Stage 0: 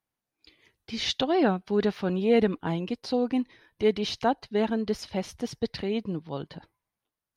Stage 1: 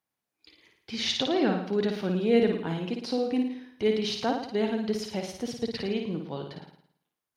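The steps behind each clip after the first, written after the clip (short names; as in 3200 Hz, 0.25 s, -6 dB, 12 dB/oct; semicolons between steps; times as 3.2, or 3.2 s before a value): HPF 140 Hz 6 dB/oct; dynamic EQ 940 Hz, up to -6 dB, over -38 dBFS, Q 0.81; flutter echo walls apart 9.5 m, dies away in 0.64 s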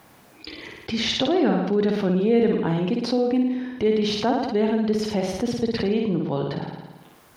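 high shelf 2200 Hz -9.5 dB; fast leveller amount 50%; gain +2.5 dB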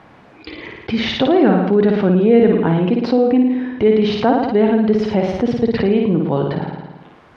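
LPF 2600 Hz 12 dB/oct; gain +7.5 dB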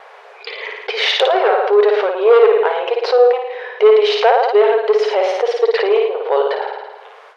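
sine folder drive 4 dB, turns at -1.5 dBFS; brick-wall FIR high-pass 390 Hz; gate with hold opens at -31 dBFS; gain -1 dB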